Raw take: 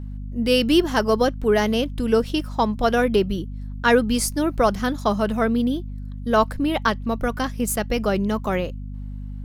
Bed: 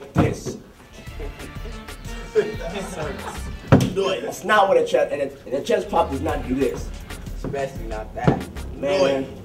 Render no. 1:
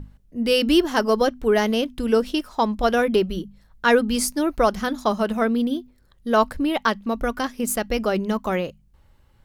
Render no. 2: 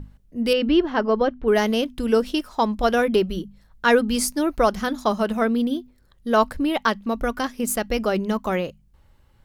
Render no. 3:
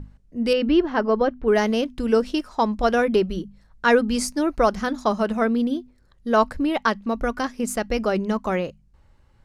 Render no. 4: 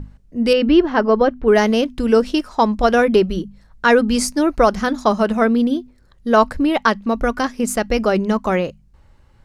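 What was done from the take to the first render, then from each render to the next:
notches 50/100/150/200/250 Hz
0.53–1.48 air absorption 300 m
LPF 8100 Hz 12 dB/oct; bell 3300 Hz -4.5 dB 0.49 oct
gain +5.5 dB; limiter -3 dBFS, peak gain reduction 3 dB

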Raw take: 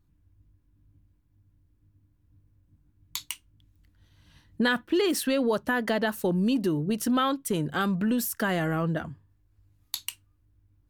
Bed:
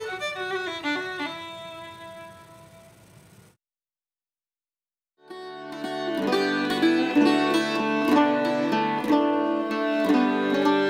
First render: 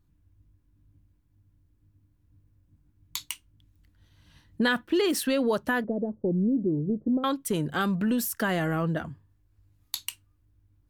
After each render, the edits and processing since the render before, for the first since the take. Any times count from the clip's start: 5.84–7.24 inverse Chebyshev low-pass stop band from 3100 Hz, stop band 80 dB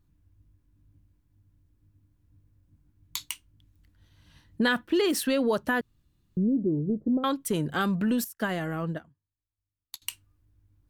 5.81–6.37 room tone; 8.24–10.02 upward expander 2.5:1, over -42 dBFS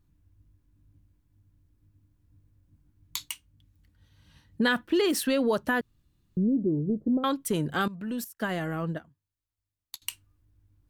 3.28–4.66 notch comb 340 Hz; 7.88–8.57 fade in, from -17 dB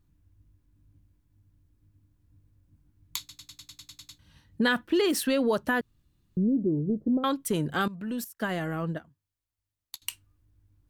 3.19 stutter in place 0.10 s, 10 plays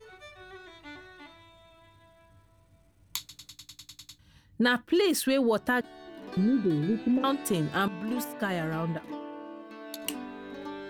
add bed -18.5 dB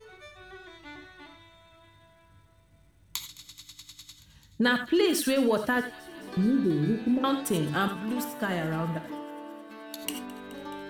thin delay 0.213 s, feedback 80%, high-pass 1500 Hz, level -20 dB; non-linear reverb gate 0.11 s rising, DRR 8 dB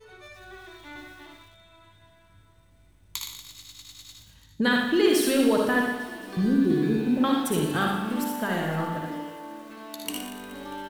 early reflections 58 ms -5.5 dB, 77 ms -6 dB; lo-fi delay 0.118 s, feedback 55%, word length 8-bit, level -8.5 dB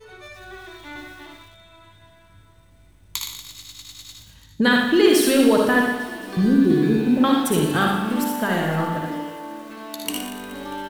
gain +5.5 dB

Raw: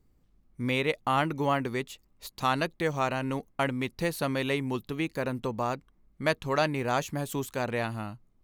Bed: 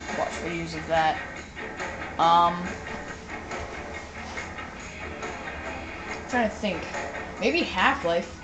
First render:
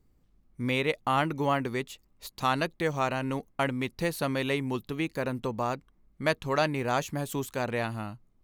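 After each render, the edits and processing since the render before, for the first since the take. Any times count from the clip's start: nothing audible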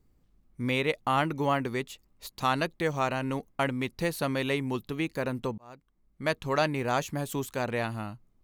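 5.58–6.46 fade in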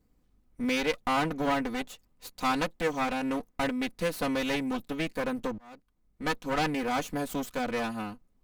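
minimum comb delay 4 ms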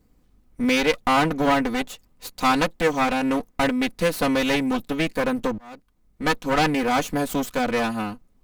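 gain +8 dB

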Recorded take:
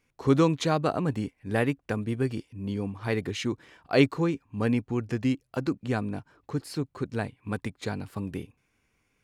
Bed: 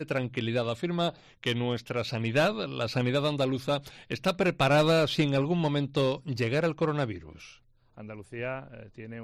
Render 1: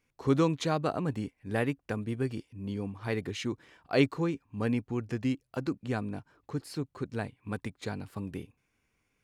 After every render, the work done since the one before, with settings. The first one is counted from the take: gain -4 dB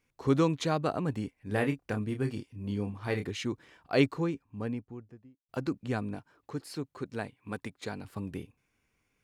1.47–3.27 doubler 29 ms -7 dB; 4–5.49 studio fade out; 6.15–8.05 low shelf 130 Hz -9.5 dB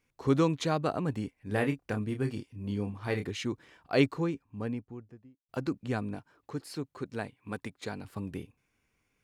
nothing audible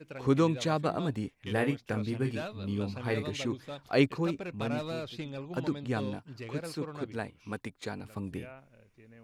add bed -14 dB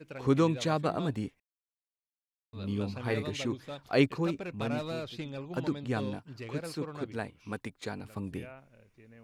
1.4–2.53 mute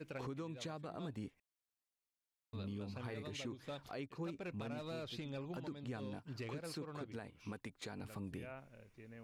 compressor 8:1, threshold -40 dBFS, peak gain reduction 20.5 dB; limiter -35.5 dBFS, peak gain reduction 7 dB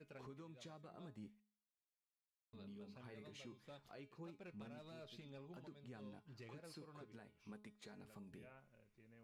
resonator 210 Hz, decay 0.47 s, harmonics all, mix 60%; flange 0.38 Hz, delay 4.8 ms, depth 1.1 ms, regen -60%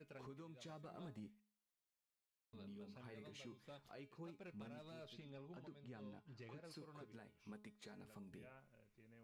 0.68–1.2 sample leveller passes 1; 5.13–6.71 air absorption 64 m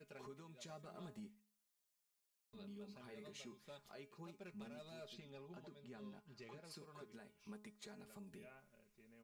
tone controls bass -3 dB, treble +6 dB; comb 4.9 ms, depth 54%

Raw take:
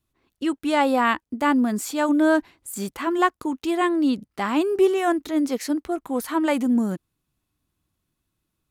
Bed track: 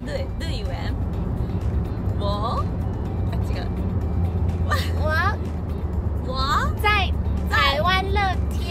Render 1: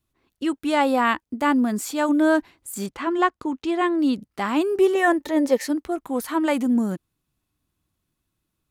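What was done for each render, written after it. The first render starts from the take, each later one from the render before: 2.86–3.99 air absorption 69 m; 4.95–5.65 small resonant body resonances 560/870/1800 Hz, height 15 dB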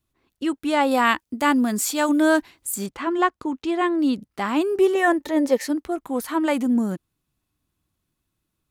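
0.91–2.76 high shelf 2400 Hz +8 dB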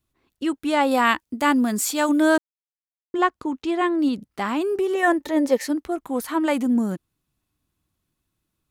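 2.38–3.14 mute; 4.08–5.03 compressor, threshold -19 dBFS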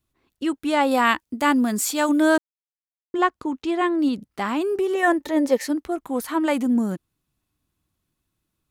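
nothing audible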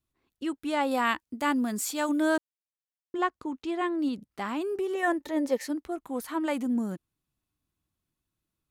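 gain -7.5 dB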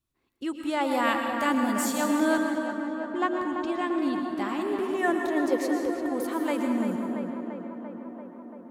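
on a send: tape echo 0.341 s, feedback 79%, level -5.5 dB, low-pass 2500 Hz; on the sum: plate-style reverb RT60 1.2 s, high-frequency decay 0.75×, pre-delay 0.1 s, DRR 4.5 dB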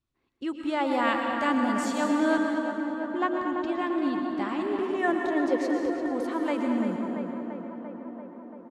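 air absorption 82 m; feedback echo 0.227 s, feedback 40%, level -12.5 dB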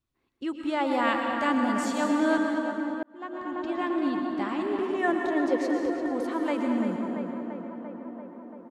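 3.03–3.84 fade in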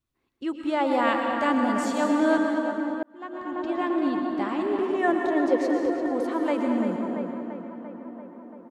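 dynamic EQ 540 Hz, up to +4 dB, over -35 dBFS, Q 0.76

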